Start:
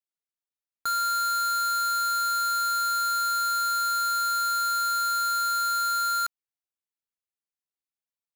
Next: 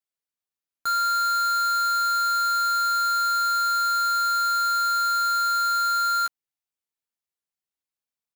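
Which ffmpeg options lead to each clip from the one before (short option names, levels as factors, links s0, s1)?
-filter_complex "[0:a]asplit=2[s0][s1];[s1]adelay=13,volume=0.501[s2];[s0][s2]amix=inputs=2:normalize=0"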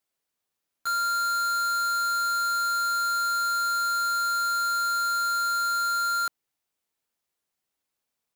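-filter_complex "[0:a]equalizer=f=470:w=0.43:g=3.5,asplit=2[s0][s1];[s1]aeval=exprs='0.112*sin(PI/2*4.47*val(0)/0.112)':c=same,volume=0.355[s2];[s0][s2]amix=inputs=2:normalize=0,volume=0.668"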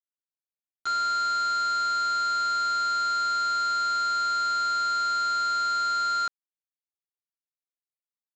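-af "lowpass=5900,aresample=16000,acrusher=bits=6:mix=0:aa=0.000001,aresample=44100"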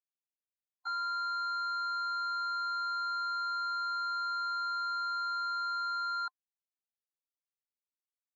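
-af "superequalizer=9b=3.55:15b=0.447,afftdn=nr=22:nf=-36,volume=0.376"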